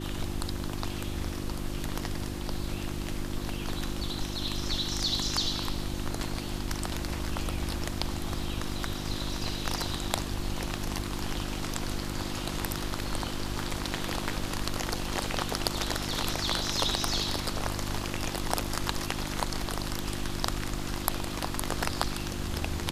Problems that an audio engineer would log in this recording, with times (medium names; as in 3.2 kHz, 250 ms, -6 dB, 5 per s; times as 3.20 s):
hum 50 Hz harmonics 7 -37 dBFS